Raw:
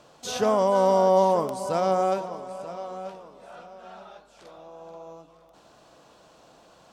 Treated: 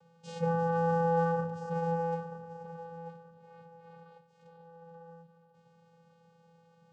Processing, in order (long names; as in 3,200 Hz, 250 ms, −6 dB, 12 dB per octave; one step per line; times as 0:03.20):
channel vocoder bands 8, square 167 Hz
level −7.5 dB